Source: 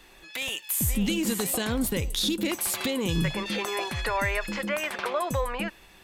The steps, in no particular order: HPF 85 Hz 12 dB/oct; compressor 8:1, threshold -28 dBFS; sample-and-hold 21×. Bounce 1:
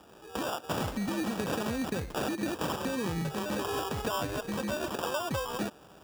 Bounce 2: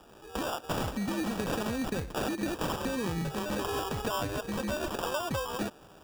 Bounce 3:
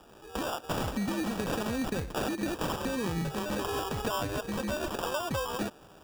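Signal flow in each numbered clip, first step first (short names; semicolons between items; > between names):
compressor > sample-and-hold > HPF; compressor > HPF > sample-and-hold; HPF > compressor > sample-and-hold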